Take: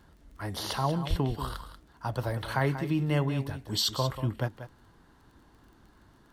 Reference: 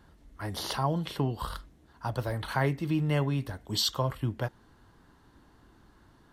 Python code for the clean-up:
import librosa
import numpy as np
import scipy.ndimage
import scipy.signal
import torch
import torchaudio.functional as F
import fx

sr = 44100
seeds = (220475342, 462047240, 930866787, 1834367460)

y = fx.fix_declick_ar(x, sr, threshold=6.5)
y = fx.fix_deplosive(y, sr, at_s=(1.09,))
y = fx.fix_echo_inverse(y, sr, delay_ms=187, level_db=-11.0)